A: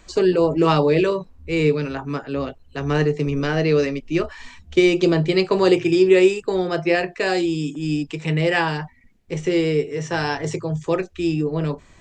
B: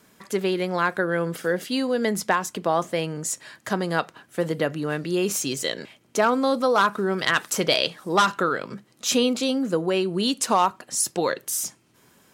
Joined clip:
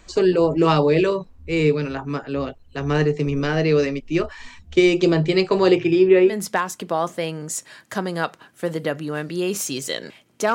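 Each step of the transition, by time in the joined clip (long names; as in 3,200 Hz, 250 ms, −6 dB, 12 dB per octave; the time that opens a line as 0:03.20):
A
0:05.58–0:06.39: low-pass filter 7,100 Hz → 1,400 Hz
0:06.31: continue with B from 0:02.06, crossfade 0.16 s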